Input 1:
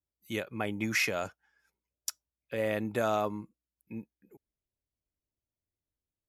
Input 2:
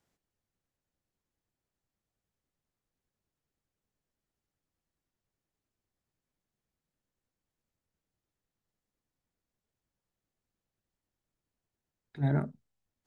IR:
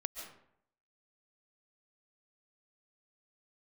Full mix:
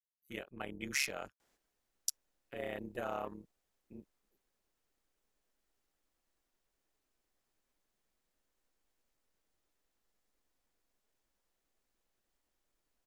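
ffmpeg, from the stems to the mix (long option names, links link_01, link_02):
-filter_complex "[0:a]afwtdn=0.00562,tremolo=f=140:d=0.889,crystalizer=i=3:c=0,volume=-7dB[link_01];[1:a]equalizer=frequency=140:width_type=o:width=1.3:gain=-12.5,adelay=1400,volume=2.5dB,asplit=2[link_02][link_03];[link_03]volume=-5dB[link_04];[2:a]atrim=start_sample=2205[link_05];[link_04][link_05]afir=irnorm=-1:irlink=0[link_06];[link_01][link_02][link_06]amix=inputs=3:normalize=0,equalizer=frequency=76:width_type=o:width=0.38:gain=-14"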